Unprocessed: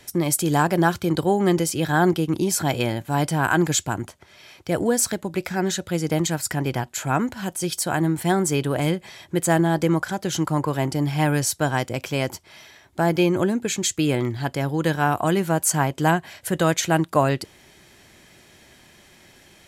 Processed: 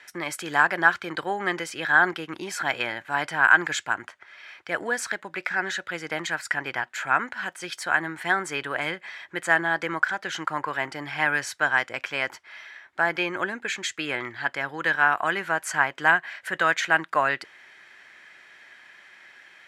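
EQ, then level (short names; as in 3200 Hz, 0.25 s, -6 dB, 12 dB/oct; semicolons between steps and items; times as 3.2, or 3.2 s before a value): band-pass 1700 Hz, Q 2.3; +8.5 dB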